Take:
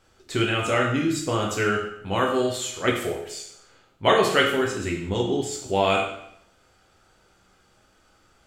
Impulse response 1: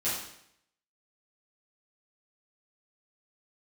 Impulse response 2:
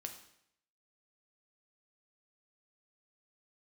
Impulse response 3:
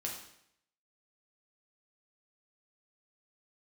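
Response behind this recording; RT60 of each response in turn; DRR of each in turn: 3; 0.70, 0.70, 0.70 s; -11.5, 4.5, -2.0 dB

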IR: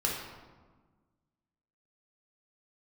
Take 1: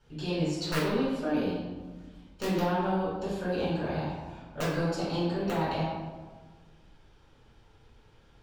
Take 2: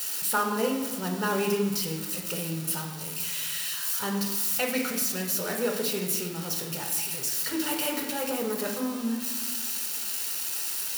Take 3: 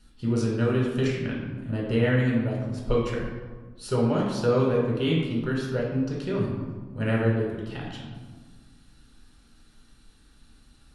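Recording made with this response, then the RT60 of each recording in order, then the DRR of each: 3; 1.4, 1.4, 1.4 s; -10.0, 1.5, -4.0 dB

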